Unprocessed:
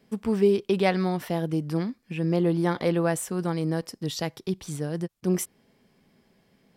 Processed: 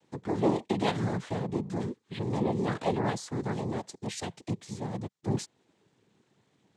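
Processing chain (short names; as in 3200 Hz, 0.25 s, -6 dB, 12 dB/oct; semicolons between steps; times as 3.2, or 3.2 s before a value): noise vocoder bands 6; gain -5 dB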